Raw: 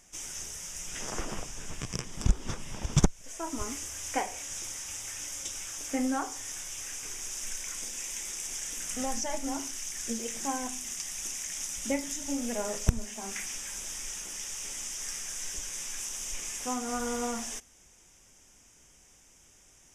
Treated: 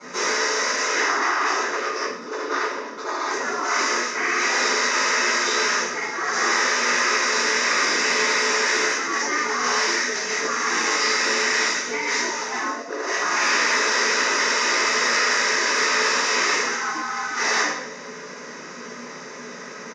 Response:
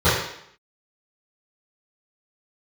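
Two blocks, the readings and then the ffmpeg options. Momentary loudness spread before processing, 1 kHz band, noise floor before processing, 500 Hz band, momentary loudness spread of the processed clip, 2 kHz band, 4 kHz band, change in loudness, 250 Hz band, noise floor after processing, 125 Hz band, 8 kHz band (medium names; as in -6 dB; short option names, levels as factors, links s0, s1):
6 LU, +17.0 dB, -59 dBFS, +13.5 dB, 12 LU, +24.5 dB, +17.0 dB, +13.5 dB, +2.5 dB, -37 dBFS, under -10 dB, +7.5 dB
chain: -filter_complex "[0:a]equalizer=f=3200:w=6.8:g=-14.5[s0];[1:a]atrim=start_sample=2205[s1];[s0][s1]afir=irnorm=-1:irlink=0,areverse,acompressor=threshold=0.126:ratio=8,areverse,asplit=2[s2][s3];[s3]adelay=105,volume=0.158,highshelf=f=4000:g=-2.36[s4];[s2][s4]amix=inputs=2:normalize=0,afftfilt=real='re*lt(hypot(re,im),0.178)':imag='im*lt(hypot(re,im),0.178)':win_size=1024:overlap=0.75,highpass=f=140:w=0.5412,highpass=f=140:w=1.3066,equalizer=f=140:t=q:w=4:g=-9,equalizer=f=370:t=q:w=4:g=8,equalizer=f=540:t=q:w=4:g=-5,equalizer=f=1100:t=q:w=4:g=7,equalizer=f=1800:t=q:w=4:g=6,equalizer=f=4400:t=q:w=4:g=7,lowpass=f=5300:w=0.5412,lowpass=f=5300:w=1.3066,bandreject=f=400:w=12,afreqshift=71,acontrast=37"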